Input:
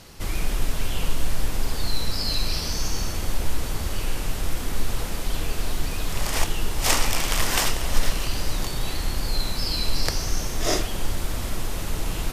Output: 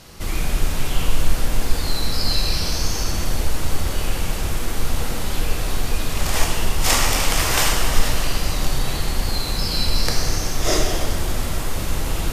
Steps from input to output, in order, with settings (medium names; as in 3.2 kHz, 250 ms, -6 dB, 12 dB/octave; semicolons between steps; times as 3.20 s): plate-style reverb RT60 2.2 s, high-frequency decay 0.75×, DRR -0.5 dB; trim +1.5 dB